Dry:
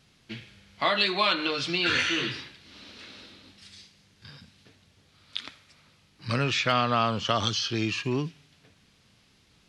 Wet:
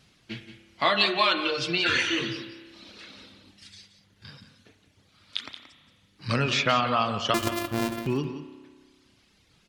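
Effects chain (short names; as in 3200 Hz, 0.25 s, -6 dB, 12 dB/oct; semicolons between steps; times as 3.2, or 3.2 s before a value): 7.34–8.07 sample sorter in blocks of 128 samples; reverb removal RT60 1.3 s; on a send: echo 0.177 s -11.5 dB; on the sum: spring tank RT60 1.6 s, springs 30 ms, chirp 60 ms, DRR 9.5 dB; gain +2 dB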